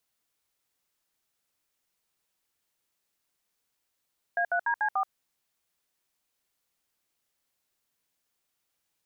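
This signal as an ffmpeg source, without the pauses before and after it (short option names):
-f lavfi -i "aevalsrc='0.0473*clip(min(mod(t,0.146),0.079-mod(t,0.146))/0.002,0,1)*(eq(floor(t/0.146),0)*(sin(2*PI*697*mod(t,0.146))+sin(2*PI*1633*mod(t,0.146)))+eq(floor(t/0.146),1)*(sin(2*PI*697*mod(t,0.146))+sin(2*PI*1477*mod(t,0.146)))+eq(floor(t/0.146),2)*(sin(2*PI*941*mod(t,0.146))+sin(2*PI*1633*mod(t,0.146)))+eq(floor(t/0.146),3)*(sin(2*PI*852*mod(t,0.146))+sin(2*PI*1633*mod(t,0.146)))+eq(floor(t/0.146),4)*(sin(2*PI*770*mod(t,0.146))+sin(2*PI*1209*mod(t,0.146))))':d=0.73:s=44100"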